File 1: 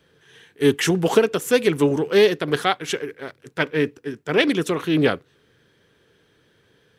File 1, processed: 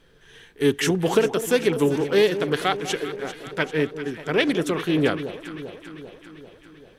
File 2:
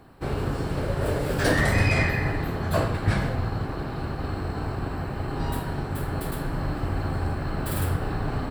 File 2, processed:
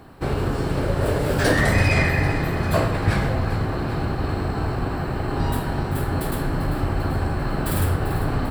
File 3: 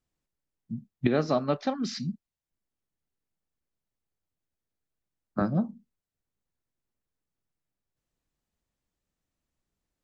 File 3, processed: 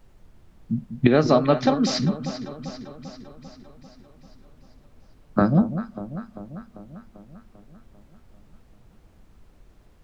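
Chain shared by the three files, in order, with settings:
in parallel at -2 dB: compression, threshold -28 dBFS; on the sum: added noise brown -56 dBFS; echo whose repeats swap between lows and highs 197 ms, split 990 Hz, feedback 77%, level -10.5 dB; normalise loudness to -23 LUFS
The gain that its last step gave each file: -4.0 dB, +1.0 dB, +5.0 dB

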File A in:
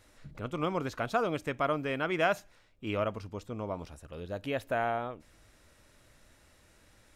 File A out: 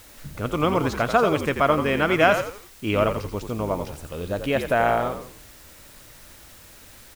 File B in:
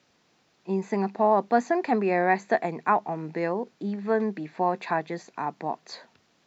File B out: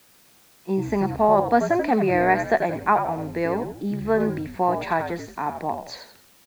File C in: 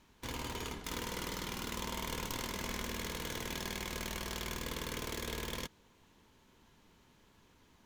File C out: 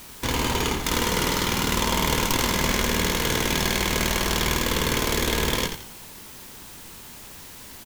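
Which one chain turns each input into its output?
word length cut 10-bit, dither triangular; frequency-shifting echo 86 ms, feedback 35%, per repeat -62 Hz, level -8 dB; normalise loudness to -23 LUFS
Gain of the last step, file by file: +10.0 dB, +3.0 dB, +16.0 dB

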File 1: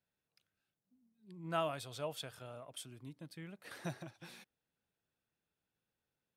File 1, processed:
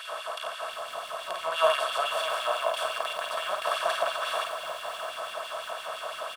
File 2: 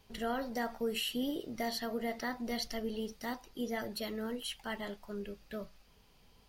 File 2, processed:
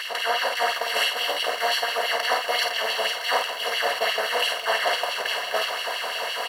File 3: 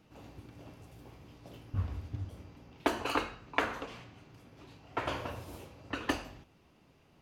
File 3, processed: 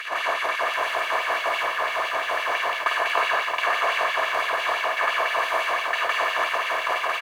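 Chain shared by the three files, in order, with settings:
spectral levelling over time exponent 0.2; treble shelf 2.2 kHz -6.5 dB; comb 1.8 ms, depth 53%; gate -29 dBFS, range -10 dB; reverse; compression 8:1, threshold -35 dBFS; reverse; LFO high-pass sine 5.9 Hz 730–3000 Hz; on a send: early reflections 37 ms -16 dB, 51 ms -5.5 dB; on the sum: bit-crushed delay 612 ms, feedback 35%, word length 9-bit, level -13.5 dB; peak normalisation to -9 dBFS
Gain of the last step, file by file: +15.5 dB, +15.0 dB, +14.0 dB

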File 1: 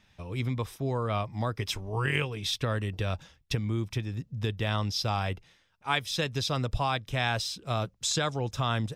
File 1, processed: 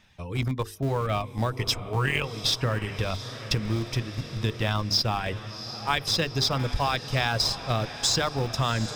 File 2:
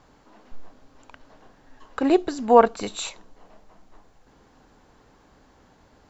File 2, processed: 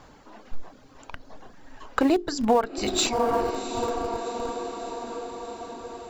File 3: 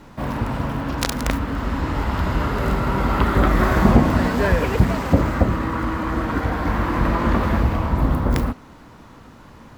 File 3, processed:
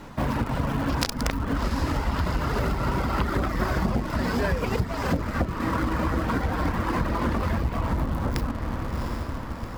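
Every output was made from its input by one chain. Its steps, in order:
reverb removal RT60 0.8 s; dynamic bell 5 kHz, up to +8 dB, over -54 dBFS, Q 4.5; on a send: echo that smears into a reverb 735 ms, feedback 65%, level -13.5 dB; on the sum: compression 8:1, threshold -25 dBFS; hum notches 50/100/150/200/250/300/350/400/450 Hz; in parallel at -9 dB: Schmitt trigger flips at -28.5 dBFS; on the sum: normalise loudness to -27 LUFS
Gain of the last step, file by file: +4.5 dB, +7.0 dB, +3.0 dB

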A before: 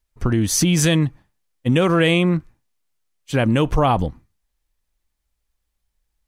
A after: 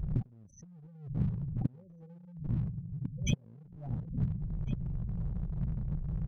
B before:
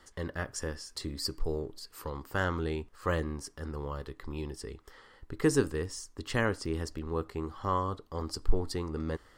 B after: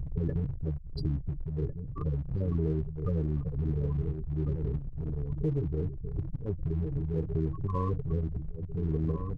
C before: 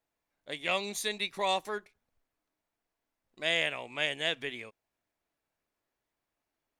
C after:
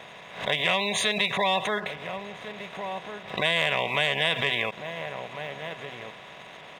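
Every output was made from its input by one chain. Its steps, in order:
spectral levelling over time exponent 0.4; inverted gate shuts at -8 dBFS, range -42 dB; resonant low shelf 210 Hz +10.5 dB, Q 1.5; spectral gate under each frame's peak -15 dB strong; echo from a far wall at 240 m, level -9 dB; waveshaping leveller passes 1; compression 6:1, threshold -21 dBFS; high-pass 65 Hz 6 dB/octave; tone controls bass -6 dB, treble -1 dB; swell ahead of each attack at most 110 dB/s; trim +2 dB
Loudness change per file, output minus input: -17.5 LU, +1.5 LU, +5.5 LU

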